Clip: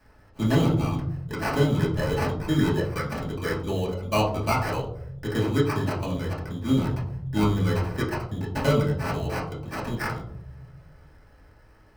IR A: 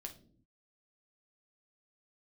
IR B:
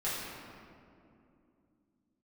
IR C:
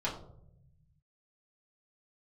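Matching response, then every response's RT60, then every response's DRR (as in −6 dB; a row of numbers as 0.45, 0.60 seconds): C; 0.50, 2.6, 0.75 seconds; 2.5, −10.5, −7.0 decibels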